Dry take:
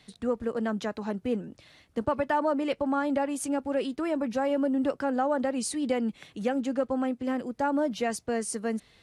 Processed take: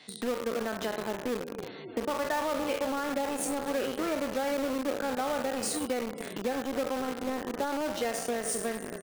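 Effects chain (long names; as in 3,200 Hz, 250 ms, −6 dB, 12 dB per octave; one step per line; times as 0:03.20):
peak hold with a decay on every bin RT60 0.75 s
on a send: echo with shifted repeats 267 ms, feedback 64%, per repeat −48 Hz, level −14.5 dB
on the sum: downward compressor 6 to 1, threshold −38 dBFS, peak gain reduction 16.5 dB
high-pass filter 260 Hz 12 dB per octave
gate on every frequency bin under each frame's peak −25 dB strong
in parallel at −10 dB: log-companded quantiser 2 bits
on the sum: level +4.5 dB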